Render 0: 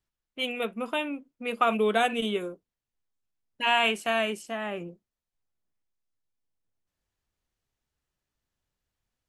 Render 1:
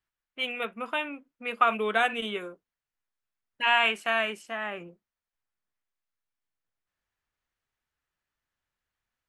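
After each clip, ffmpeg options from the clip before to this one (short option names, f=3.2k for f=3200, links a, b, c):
-af "equalizer=f=1.6k:w=0.58:g=11.5,volume=-7.5dB"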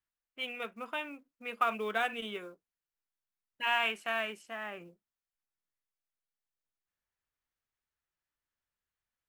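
-af "acrusher=bits=7:mode=log:mix=0:aa=0.000001,volume=-7dB"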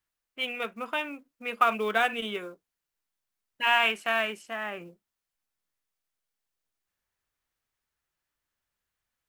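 -af "acrusher=bits=9:mode=log:mix=0:aa=0.000001,volume=6.5dB"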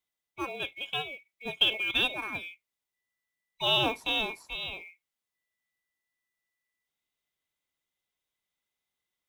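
-af "afftfilt=real='real(if(lt(b,920),b+92*(1-2*mod(floor(b/92),2)),b),0)':imag='imag(if(lt(b,920),b+92*(1-2*mod(floor(b/92),2)),b),0)':win_size=2048:overlap=0.75,volume=-2.5dB"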